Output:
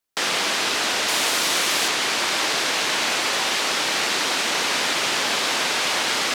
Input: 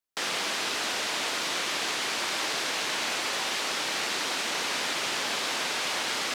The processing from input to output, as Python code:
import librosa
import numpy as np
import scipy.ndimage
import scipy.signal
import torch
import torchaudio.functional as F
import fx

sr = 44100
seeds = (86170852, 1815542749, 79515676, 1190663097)

y = fx.high_shelf(x, sr, hz=9300.0, db=11.0, at=(1.08, 1.88))
y = y * 10.0 ** (7.5 / 20.0)